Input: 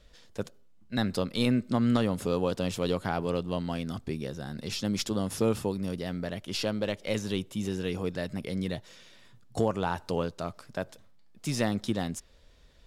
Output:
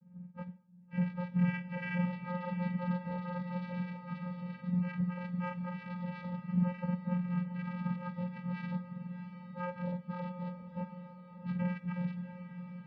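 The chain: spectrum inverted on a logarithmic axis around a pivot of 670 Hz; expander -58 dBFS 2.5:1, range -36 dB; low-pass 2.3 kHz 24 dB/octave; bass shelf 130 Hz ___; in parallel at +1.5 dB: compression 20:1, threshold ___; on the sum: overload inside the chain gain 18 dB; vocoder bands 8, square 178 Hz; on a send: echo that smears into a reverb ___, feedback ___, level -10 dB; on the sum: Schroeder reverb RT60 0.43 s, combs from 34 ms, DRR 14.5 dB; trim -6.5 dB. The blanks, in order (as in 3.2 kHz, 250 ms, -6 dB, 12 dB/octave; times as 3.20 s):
+3 dB, -38 dBFS, 682 ms, 52%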